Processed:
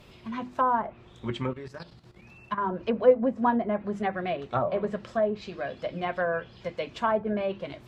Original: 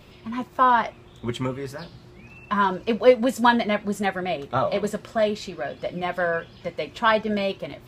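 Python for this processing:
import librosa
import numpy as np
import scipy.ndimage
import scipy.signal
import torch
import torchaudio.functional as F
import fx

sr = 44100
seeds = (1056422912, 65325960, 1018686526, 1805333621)

y = fx.env_lowpass_down(x, sr, base_hz=920.0, full_db=-18.0)
y = fx.hum_notches(y, sr, base_hz=50, count=7)
y = fx.level_steps(y, sr, step_db=12, at=(1.53, 2.68))
y = F.gain(torch.from_numpy(y), -3.0).numpy()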